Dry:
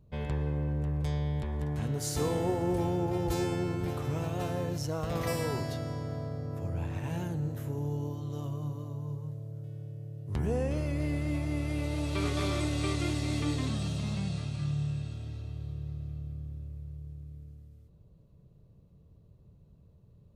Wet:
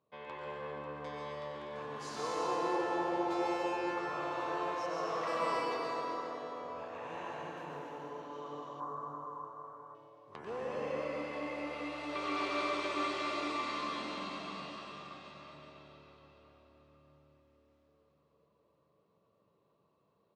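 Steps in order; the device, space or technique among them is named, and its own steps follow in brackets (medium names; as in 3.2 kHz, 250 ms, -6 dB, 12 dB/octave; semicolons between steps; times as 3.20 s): station announcement (band-pass 500–4000 Hz; peaking EQ 1.1 kHz +10.5 dB 0.25 oct; loudspeakers at several distances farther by 32 m -9 dB, 48 m -9 dB; reverberation RT60 4.4 s, pre-delay 111 ms, DRR -5 dB); 8.80–9.95 s: FFT filter 620 Hz 0 dB, 1.4 kHz +10 dB, 2.7 kHz -17 dB, 11 kHz +4 dB; trim -5.5 dB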